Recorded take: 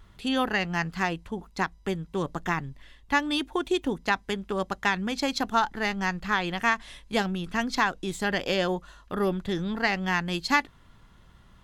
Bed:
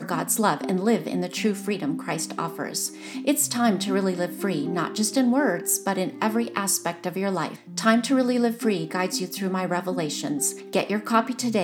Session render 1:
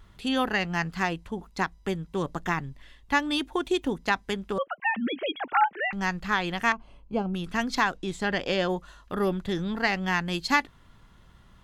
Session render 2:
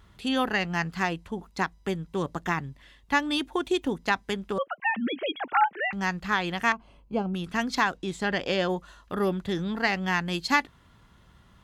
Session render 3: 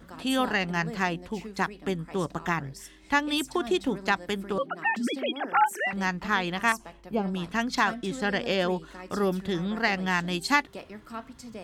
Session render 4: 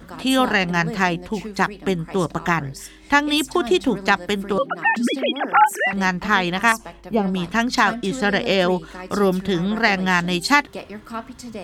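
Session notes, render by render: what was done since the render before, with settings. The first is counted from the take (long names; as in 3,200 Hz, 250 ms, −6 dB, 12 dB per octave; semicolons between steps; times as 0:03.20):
0:04.58–0:05.93: three sine waves on the formant tracks; 0:06.72–0:07.34: moving average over 24 samples; 0:07.97–0:08.70: high-frequency loss of the air 52 metres
high-pass filter 45 Hz
mix in bed −18 dB
level +8 dB; brickwall limiter −3 dBFS, peak gain reduction 1.5 dB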